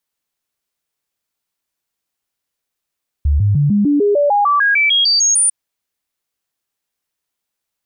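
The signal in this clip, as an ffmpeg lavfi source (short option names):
-f lavfi -i "aevalsrc='0.316*clip(min(mod(t,0.15),0.15-mod(t,0.15))/0.005,0,1)*sin(2*PI*72.4*pow(2,floor(t/0.15)/2)*mod(t,0.15))':d=2.25:s=44100"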